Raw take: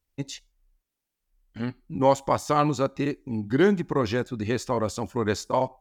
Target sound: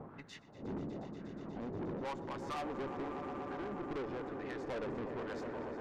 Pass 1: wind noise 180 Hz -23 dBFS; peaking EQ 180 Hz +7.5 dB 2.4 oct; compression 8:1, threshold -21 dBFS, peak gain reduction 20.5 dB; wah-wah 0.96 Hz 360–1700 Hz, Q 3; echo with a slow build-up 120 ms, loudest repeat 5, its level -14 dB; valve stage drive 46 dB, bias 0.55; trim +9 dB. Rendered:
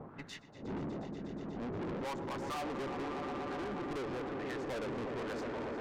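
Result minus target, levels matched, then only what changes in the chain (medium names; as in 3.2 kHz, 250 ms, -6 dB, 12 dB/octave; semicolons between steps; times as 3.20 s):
compression: peak gain reduction -6.5 dB
change: compression 8:1, threshold -28.5 dBFS, peak gain reduction 27 dB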